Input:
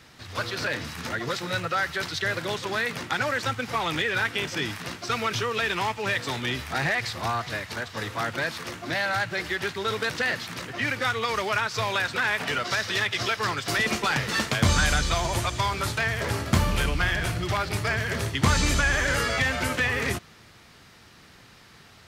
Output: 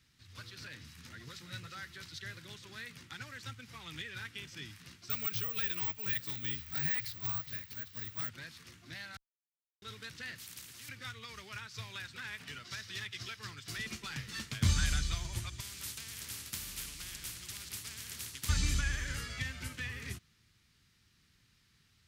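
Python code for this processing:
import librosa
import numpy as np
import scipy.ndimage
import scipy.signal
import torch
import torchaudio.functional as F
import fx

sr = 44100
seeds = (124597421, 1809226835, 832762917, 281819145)

y = fx.echo_throw(x, sr, start_s=0.79, length_s=0.65, ms=350, feedback_pct=55, wet_db=-7.0)
y = fx.resample_bad(y, sr, factor=2, down='filtered', up='zero_stuff', at=(5.1, 8.29))
y = fx.spectral_comp(y, sr, ratio=4.0, at=(10.38, 10.89))
y = fx.spectral_comp(y, sr, ratio=4.0, at=(15.6, 18.49))
y = fx.edit(y, sr, fx.silence(start_s=9.17, length_s=0.65), tone=tone)
y = fx.tone_stack(y, sr, knobs='6-0-2')
y = fx.upward_expand(y, sr, threshold_db=-49.0, expansion=1.5)
y = y * librosa.db_to_amplitude(8.0)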